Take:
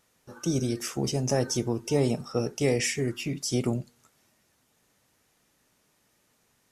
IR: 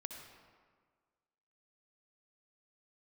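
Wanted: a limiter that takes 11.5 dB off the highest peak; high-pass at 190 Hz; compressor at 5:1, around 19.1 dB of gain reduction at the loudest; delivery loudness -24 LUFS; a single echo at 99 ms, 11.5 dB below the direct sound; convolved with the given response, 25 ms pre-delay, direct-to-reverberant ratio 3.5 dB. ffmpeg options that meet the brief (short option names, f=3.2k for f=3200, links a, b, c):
-filter_complex "[0:a]highpass=190,acompressor=threshold=-43dB:ratio=5,alimiter=level_in=15.5dB:limit=-24dB:level=0:latency=1,volume=-15.5dB,aecho=1:1:99:0.266,asplit=2[a][b];[1:a]atrim=start_sample=2205,adelay=25[c];[b][c]afir=irnorm=-1:irlink=0,volume=-1dB[d];[a][d]amix=inputs=2:normalize=0,volume=23dB"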